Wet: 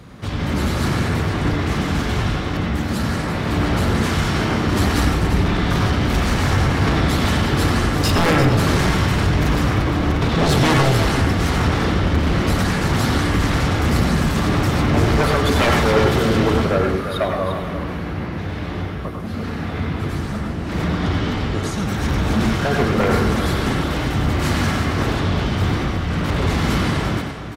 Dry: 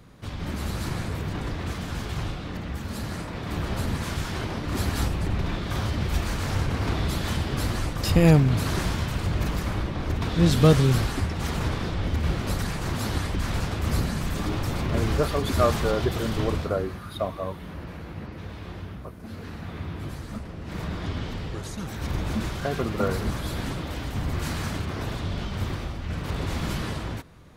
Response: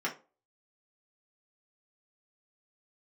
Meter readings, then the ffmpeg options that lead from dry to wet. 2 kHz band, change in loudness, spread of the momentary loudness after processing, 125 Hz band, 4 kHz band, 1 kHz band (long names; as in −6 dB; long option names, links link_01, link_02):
+11.5 dB, +8.0 dB, 9 LU, +7.0 dB, +9.5 dB, +11.0 dB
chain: -filter_complex "[0:a]highpass=41,highshelf=frequency=10000:gain=-6.5,aeval=exprs='0.531*sin(PI/2*5.01*val(0)/0.531)':channel_layout=same,aecho=1:1:346:0.335,asplit=2[link_01][link_02];[1:a]atrim=start_sample=2205,adelay=90[link_03];[link_02][link_03]afir=irnorm=-1:irlink=0,volume=-8dB[link_04];[link_01][link_04]amix=inputs=2:normalize=0,volume=-8dB"